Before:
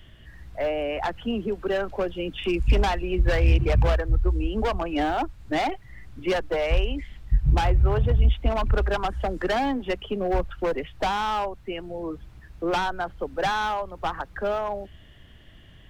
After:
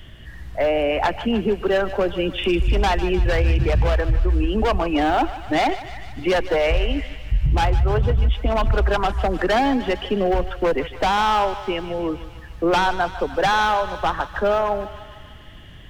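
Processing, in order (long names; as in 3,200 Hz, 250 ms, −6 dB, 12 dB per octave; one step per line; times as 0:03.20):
brickwall limiter −19 dBFS, peak gain reduction 10 dB
on a send: feedback echo with a high-pass in the loop 151 ms, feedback 71%, high-pass 630 Hz, level −12.5 dB
on the sum: level +7.5 dB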